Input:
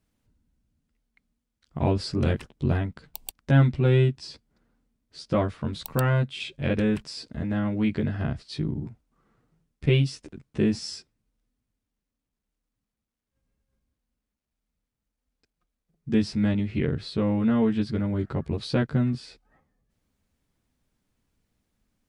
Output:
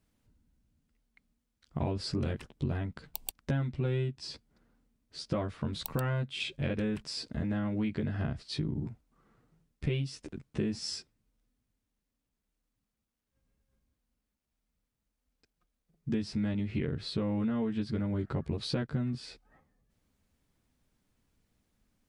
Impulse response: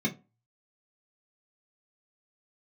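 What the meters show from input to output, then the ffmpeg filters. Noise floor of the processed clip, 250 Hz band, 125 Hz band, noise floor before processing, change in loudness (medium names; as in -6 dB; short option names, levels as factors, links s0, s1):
-85 dBFS, -8.0 dB, -9.0 dB, -85 dBFS, -8.5 dB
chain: -af "acompressor=threshold=0.0355:ratio=6"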